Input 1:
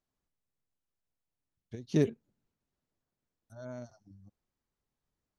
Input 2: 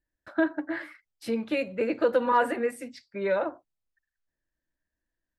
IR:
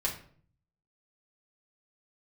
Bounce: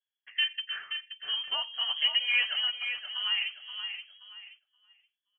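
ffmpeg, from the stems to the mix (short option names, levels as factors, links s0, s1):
-filter_complex "[0:a]lowpass=1600,volume=0.708[s0];[1:a]lowpass=4800,volume=0.631,asplit=3[s1][s2][s3];[s2]volume=0.398[s4];[s3]apad=whole_len=237476[s5];[s0][s5]sidechaincompress=threshold=0.01:ratio=8:attack=16:release=390[s6];[s4]aecho=0:1:526|1052|1578|2104:1|0.31|0.0961|0.0298[s7];[s6][s1][s7]amix=inputs=3:normalize=0,agate=range=0.447:threshold=0.00178:ratio=16:detection=peak,lowpass=f=2900:t=q:w=0.5098,lowpass=f=2900:t=q:w=0.6013,lowpass=f=2900:t=q:w=0.9,lowpass=f=2900:t=q:w=2.563,afreqshift=-3400"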